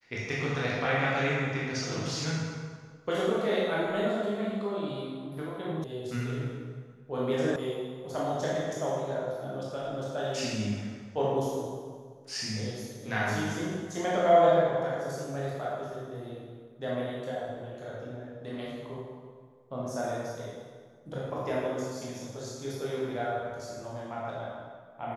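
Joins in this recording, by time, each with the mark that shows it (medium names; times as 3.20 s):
5.84 s: sound stops dead
7.56 s: sound stops dead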